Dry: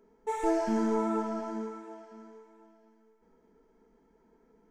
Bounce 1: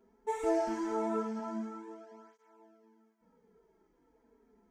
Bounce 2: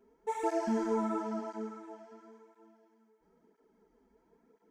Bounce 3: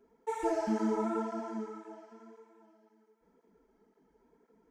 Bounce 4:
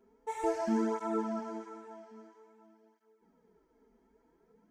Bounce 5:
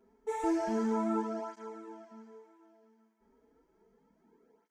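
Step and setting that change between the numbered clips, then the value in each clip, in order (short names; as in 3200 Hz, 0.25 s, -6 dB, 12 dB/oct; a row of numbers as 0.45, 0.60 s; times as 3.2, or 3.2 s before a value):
tape flanging out of phase, nulls at: 0.21, 0.98, 1.9, 0.5, 0.32 Hz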